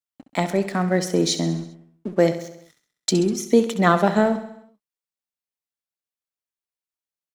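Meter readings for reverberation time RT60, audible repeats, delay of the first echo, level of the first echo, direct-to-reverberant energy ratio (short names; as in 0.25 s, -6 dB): none, 5, 66 ms, -12.0 dB, none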